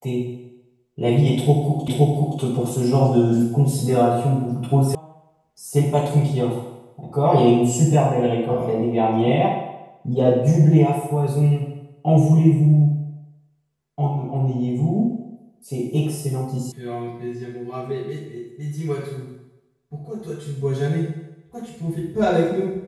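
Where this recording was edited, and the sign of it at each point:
1.88 repeat of the last 0.52 s
4.95 sound cut off
16.72 sound cut off

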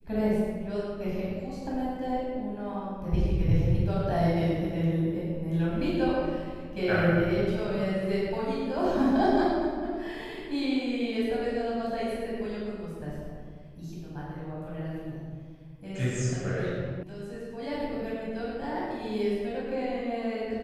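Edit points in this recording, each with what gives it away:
17.03 sound cut off

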